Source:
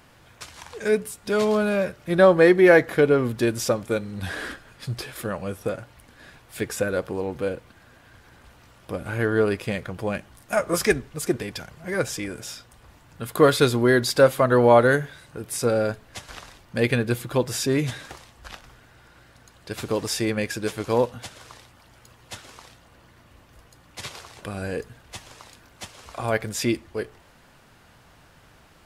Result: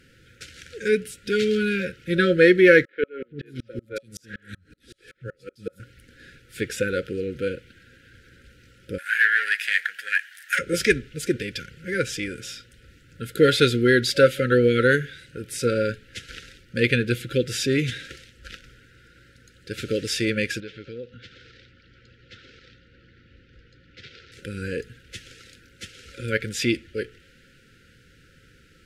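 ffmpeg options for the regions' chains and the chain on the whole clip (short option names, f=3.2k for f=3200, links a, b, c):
-filter_complex "[0:a]asettb=1/sr,asplit=3[a][b][c];[a]atrim=end=2.854[d];[b]atrim=start=2.85:end=5.8,asetpts=PTS-STARTPTS,afade=t=in:d=0.004:c=qsin,afade=t=out:st=2.946:d=0.004:c=qsin,acrossover=split=290|3300[e][f][g];[e]adelay=340[h];[g]adelay=570[i];[h][f][i]amix=inputs=3:normalize=0,atrim=end_sample=130095,aeval=exprs='val(0)*pow(10,-39*if(lt(mod(-5.3*n/s,1),2*abs(-5.3)/1000),1-mod(-5.3*n/s,1)/(2*abs(-5.3)/1000),(mod(-5.3*n/s,1)-2*abs(-5.3)/1000)/(1-2*abs(-5.3)/1000))/20)':c=same[j];[c]atrim=start=5.796[k];[d][j]acrossfade=d=0.004:c1=hsin:c2=qsin[l];[l][k]acrossfade=d=0.004:c1=qsin:c2=hsin,asettb=1/sr,asplit=3[m][n][o];[m]atrim=end=8.984[p];[n]atrim=start=8.98:end=10.59,asetpts=PTS-STARTPTS,afade=t=in:d=0.004:c=qsin,afade=t=out:st=1.606:d=0.004:c=qsin,aemphasis=mode=production:type=50kf,aeval=exprs='(tanh(8.91*val(0)+0.5)-tanh(0.5))/8.91':c=same,highpass=f=1.7k:t=q:w=7.6[q];[o]atrim=start=10.586[r];[p][q]acrossfade=d=0.004:c1=hsin:c2=qsin[s];[s][r]acrossfade=d=0.004:c1=qsin:c2=hsin,asettb=1/sr,asplit=3[t][u][v];[t]atrim=end=20.604[w];[u]atrim=start=20.6:end=24.32,asetpts=PTS-STARTPTS,afade=t=in:d=0.004:c=qsin,afade=t=out:st=3.716:d=0.004:c=qsin,lowpass=f=4.7k:w=0.5412,lowpass=f=4.7k:w=1.3066,acompressor=threshold=-44dB:ratio=2:attack=3.2:release=140:knee=1:detection=peak[x];[v]atrim=start=24.316[y];[w][x]acrossfade=d=0.004:c1=hsin:c2=qsin[z];[z][y]acrossfade=d=0.004:c1=qsin:c2=hsin,highshelf=f=9.7k:g=-9.5,afftfilt=real='re*(1-between(b*sr/4096,550,1300))':imag='im*(1-between(b*sr/4096,550,1300))':win_size=4096:overlap=0.75,adynamicequalizer=threshold=0.00631:dfrequency=2900:dqfactor=1.1:tfrequency=2900:tqfactor=1.1:attack=5:release=100:ratio=0.375:range=3.5:mode=boostabove:tftype=bell"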